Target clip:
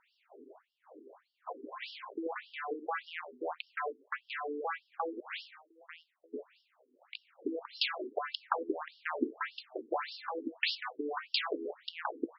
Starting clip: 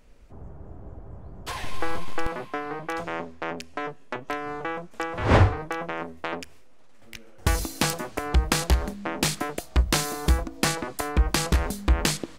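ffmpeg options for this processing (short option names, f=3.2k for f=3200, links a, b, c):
-filter_complex "[0:a]asettb=1/sr,asplit=3[a][b][c];[a]atrim=end=5.204[d];[b]atrim=start=5.2:end=6.34,asetpts=PTS-STARTPTS,afade=t=in:d=0.004:c=qsin,afade=t=out:st=1.136:d=0.004:c=qsin,aderivative[e];[c]atrim=start=6.336[f];[d][e]acrossfade=d=0.004:c1=hsin:c2=qsin[g];[g][f]acrossfade=d=0.004:c1=qsin:c2=hsin,afftfilt=real='re*between(b*sr/1024,310*pow(4000/310,0.5+0.5*sin(2*PI*1.7*pts/sr))/1.41,310*pow(4000/310,0.5+0.5*sin(2*PI*1.7*pts/sr))*1.41)':imag='im*between(b*sr/1024,310*pow(4000/310,0.5+0.5*sin(2*PI*1.7*pts/sr))/1.41,310*pow(4000/310,0.5+0.5*sin(2*PI*1.7*pts/sr))*1.41)':win_size=1024:overlap=0.75"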